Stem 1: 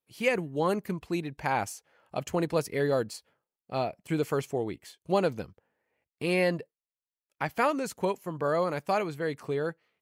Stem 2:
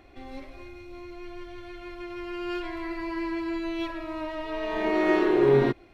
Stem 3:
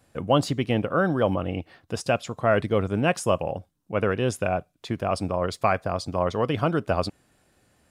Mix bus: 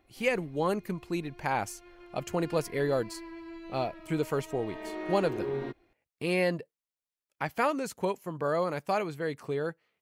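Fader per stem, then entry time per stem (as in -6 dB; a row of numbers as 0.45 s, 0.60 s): -1.5 dB, -13.5 dB, mute; 0.00 s, 0.00 s, mute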